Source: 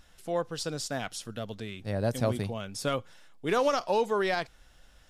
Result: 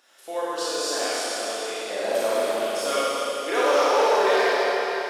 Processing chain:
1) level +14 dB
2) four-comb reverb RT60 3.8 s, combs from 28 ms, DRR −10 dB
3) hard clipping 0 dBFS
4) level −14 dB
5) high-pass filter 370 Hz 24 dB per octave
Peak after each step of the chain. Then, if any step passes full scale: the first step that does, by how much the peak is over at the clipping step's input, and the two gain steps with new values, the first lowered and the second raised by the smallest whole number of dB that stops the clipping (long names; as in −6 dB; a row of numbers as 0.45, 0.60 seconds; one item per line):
−1.5, +8.5, 0.0, −14.0, −9.0 dBFS
step 2, 8.5 dB
step 1 +5 dB, step 4 −5 dB